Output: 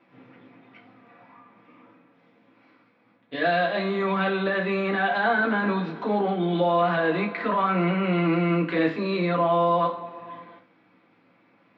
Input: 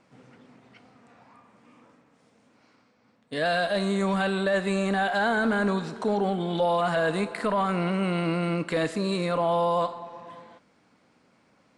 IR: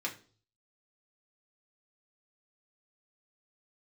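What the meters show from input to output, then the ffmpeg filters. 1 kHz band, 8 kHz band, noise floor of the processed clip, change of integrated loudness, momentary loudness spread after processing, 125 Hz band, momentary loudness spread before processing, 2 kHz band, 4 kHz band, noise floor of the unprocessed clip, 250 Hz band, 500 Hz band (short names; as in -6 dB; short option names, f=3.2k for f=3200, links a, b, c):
+3.0 dB, under -25 dB, -62 dBFS, +2.0 dB, 5 LU, +2.0 dB, 4 LU, +3.0 dB, -1.0 dB, -64 dBFS, +2.0 dB, +1.5 dB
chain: -filter_complex "[0:a]lowpass=f=3.6k:w=0.5412,lowpass=f=3.6k:w=1.3066[a];[1:a]atrim=start_sample=2205,afade=t=out:st=0.15:d=0.01,atrim=end_sample=7056[b];[a][b]afir=irnorm=-1:irlink=0"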